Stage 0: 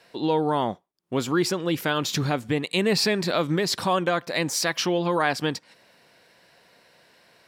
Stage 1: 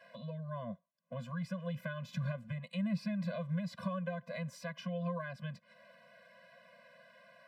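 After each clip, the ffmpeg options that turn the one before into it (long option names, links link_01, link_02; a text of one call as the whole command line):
ffmpeg -i in.wav -filter_complex "[0:a]acrossover=split=200[link_01][link_02];[link_02]acompressor=threshold=-38dB:ratio=8[link_03];[link_01][link_03]amix=inputs=2:normalize=0,acrossover=split=180 2700:gain=0.0891 1 0.178[link_04][link_05][link_06];[link_04][link_05][link_06]amix=inputs=3:normalize=0,afftfilt=real='re*eq(mod(floor(b*sr/1024/240),2),0)':imag='im*eq(mod(floor(b*sr/1024/240),2),0)':win_size=1024:overlap=0.75,volume=2dB" out.wav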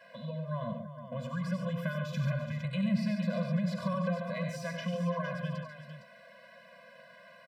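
ffmpeg -i in.wav -af "aecho=1:1:72|94|139|339|460:0.266|0.447|0.398|0.237|0.335,volume=3.5dB" out.wav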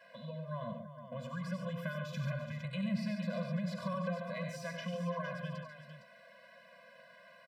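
ffmpeg -i in.wav -af "lowshelf=frequency=340:gain=-3.5,volume=-3dB" out.wav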